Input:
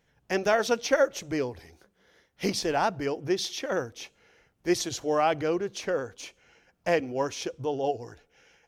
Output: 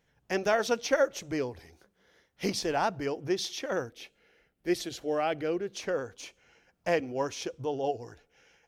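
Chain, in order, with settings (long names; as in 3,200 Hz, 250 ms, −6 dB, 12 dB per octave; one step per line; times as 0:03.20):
0:03.89–0:05.73: graphic EQ with 15 bands 100 Hz −11 dB, 1,000 Hz −8 dB, 6,300 Hz −8 dB
level −2.5 dB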